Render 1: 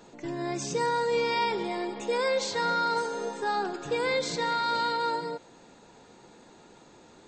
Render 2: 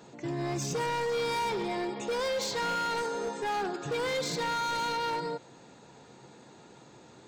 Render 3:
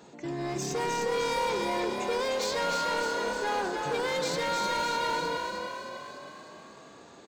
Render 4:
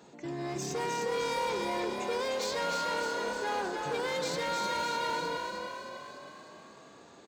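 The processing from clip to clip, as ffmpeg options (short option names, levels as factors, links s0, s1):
-af "highpass=60,equalizer=f=130:w=3.9:g=9,asoftclip=type=hard:threshold=0.0398"
-filter_complex "[0:a]equalizer=f=120:w=6.6:g=-14.5,asplit=2[s0][s1];[s1]asplit=8[s2][s3][s4][s5][s6][s7][s8][s9];[s2]adelay=305,afreqshift=35,volume=0.631[s10];[s3]adelay=610,afreqshift=70,volume=0.367[s11];[s4]adelay=915,afreqshift=105,volume=0.211[s12];[s5]adelay=1220,afreqshift=140,volume=0.123[s13];[s6]adelay=1525,afreqshift=175,volume=0.0716[s14];[s7]adelay=1830,afreqshift=210,volume=0.0412[s15];[s8]adelay=2135,afreqshift=245,volume=0.024[s16];[s9]adelay=2440,afreqshift=280,volume=0.014[s17];[s10][s11][s12][s13][s14][s15][s16][s17]amix=inputs=8:normalize=0[s18];[s0][s18]amix=inputs=2:normalize=0"
-af "highpass=52,volume=0.708"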